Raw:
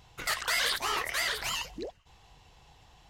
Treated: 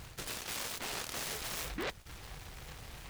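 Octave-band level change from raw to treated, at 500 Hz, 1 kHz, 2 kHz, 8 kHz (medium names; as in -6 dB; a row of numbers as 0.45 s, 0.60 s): -4.5 dB, -9.5 dB, -11.5 dB, -4.0 dB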